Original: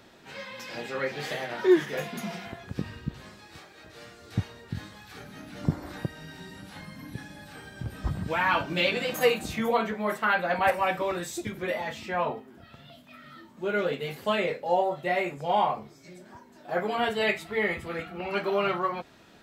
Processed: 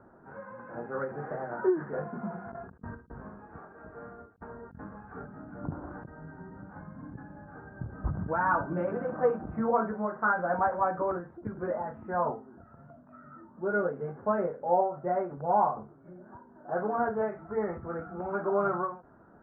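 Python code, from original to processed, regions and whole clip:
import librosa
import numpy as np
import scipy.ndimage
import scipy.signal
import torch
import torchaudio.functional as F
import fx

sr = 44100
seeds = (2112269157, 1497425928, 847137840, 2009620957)

y = fx.chain(x, sr, fx.comb(ms=4.4, depth=0.39),
    fx.over_compress(threshold_db=-41.0, ratio=-0.5), at=(2.48, 5.26))
y = scipy.signal.sosfilt(scipy.signal.cheby1(5, 1.0, 1500.0, 'lowpass', fs=sr, output='sos'), y)
y = fx.end_taper(y, sr, db_per_s=150.0)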